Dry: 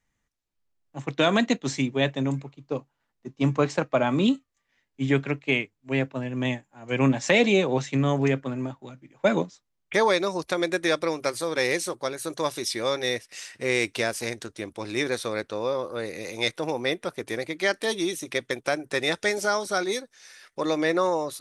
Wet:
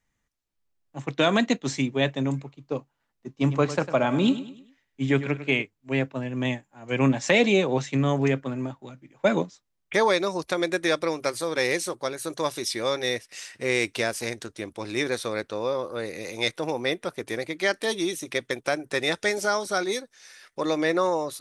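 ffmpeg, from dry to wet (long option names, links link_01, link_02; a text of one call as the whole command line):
ffmpeg -i in.wav -filter_complex "[0:a]asettb=1/sr,asplit=3[link_01][link_02][link_03];[link_01]atrim=end=3.314[link_04];[link_02]atrim=start=3.31:end=5.62,asetpts=PTS-STARTPTS,afade=type=in:duration=0.004:curve=qsin,afade=type=out:start_time=2.306:duration=0.004:curve=qsin,aecho=1:1:101|202|303|404:0.224|0.0895|0.0358|0.0143,atrim=end_sample=101871[link_05];[link_03]atrim=start=5.616[link_06];[link_04][link_05]acrossfade=duration=0.004:curve1=hsin:curve2=qsin[link_07];[link_07][link_06]acrossfade=duration=0.004:curve1=qsin:curve2=hsin" out.wav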